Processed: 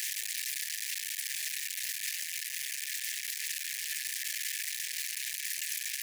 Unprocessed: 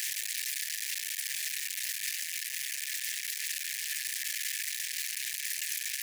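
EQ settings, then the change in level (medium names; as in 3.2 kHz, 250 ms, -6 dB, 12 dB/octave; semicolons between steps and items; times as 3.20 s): high-pass 1.3 kHz 24 dB/octave; -1.0 dB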